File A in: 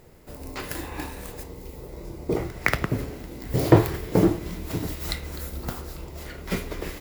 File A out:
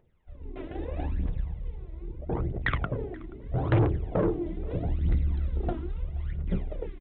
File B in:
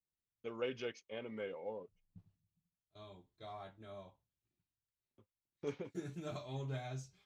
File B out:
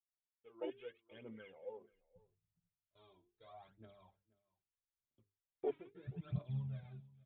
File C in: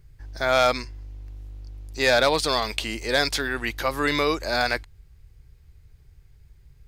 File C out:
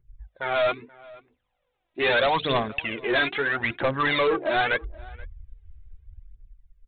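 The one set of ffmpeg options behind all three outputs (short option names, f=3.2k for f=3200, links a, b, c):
-filter_complex "[0:a]bandreject=f=50:t=h:w=6,bandreject=f=100:t=h:w=6,bandreject=f=150:t=h:w=6,bandreject=f=200:t=h:w=6,bandreject=f=250:t=h:w=6,bandreject=f=300:t=h:w=6,bandreject=f=350:t=h:w=6,bandreject=f=400:t=h:w=6,bandreject=f=450:t=h:w=6,afwtdn=0.0316,dynaudnorm=f=130:g=13:m=9.5dB,aphaser=in_gain=1:out_gain=1:delay=3.2:decay=0.7:speed=0.78:type=triangular,aresample=8000,asoftclip=type=tanh:threshold=-13.5dB,aresample=44100,asplit=2[a][b];[b]adelay=478.1,volume=-22dB,highshelf=f=4k:g=-10.8[c];[a][c]amix=inputs=2:normalize=0,volume=-4.5dB"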